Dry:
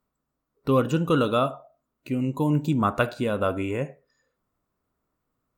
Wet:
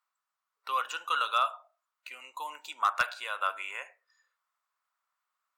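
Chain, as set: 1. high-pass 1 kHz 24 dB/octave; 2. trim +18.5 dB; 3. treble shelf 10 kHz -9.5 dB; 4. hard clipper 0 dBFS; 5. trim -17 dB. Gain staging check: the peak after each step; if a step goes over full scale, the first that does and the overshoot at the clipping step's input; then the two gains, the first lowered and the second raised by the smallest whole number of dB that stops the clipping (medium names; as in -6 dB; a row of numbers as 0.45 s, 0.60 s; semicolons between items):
-9.5 dBFS, +9.0 dBFS, +8.5 dBFS, 0.0 dBFS, -17.0 dBFS; step 2, 8.5 dB; step 2 +9.5 dB, step 5 -8 dB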